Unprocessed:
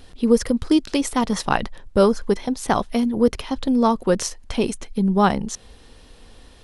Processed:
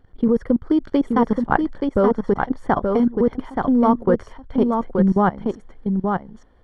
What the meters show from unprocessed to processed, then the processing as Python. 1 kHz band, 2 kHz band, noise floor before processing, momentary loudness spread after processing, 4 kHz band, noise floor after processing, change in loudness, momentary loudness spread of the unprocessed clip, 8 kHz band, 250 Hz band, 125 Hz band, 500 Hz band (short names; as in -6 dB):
+1.5 dB, 0.0 dB, -47 dBFS, 8 LU, under -10 dB, -52 dBFS, +0.5 dB, 7 LU, under -25 dB, +2.0 dB, +2.5 dB, +1.0 dB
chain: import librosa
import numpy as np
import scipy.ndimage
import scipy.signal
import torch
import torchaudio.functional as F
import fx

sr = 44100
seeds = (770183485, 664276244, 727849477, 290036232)

y = fx.level_steps(x, sr, step_db=20)
y = scipy.signal.savgol_filter(y, 41, 4, mode='constant')
y = y + 10.0 ** (-4.5 / 20.0) * np.pad(y, (int(877 * sr / 1000.0), 0))[:len(y)]
y = F.gain(torch.from_numpy(y), 5.0).numpy()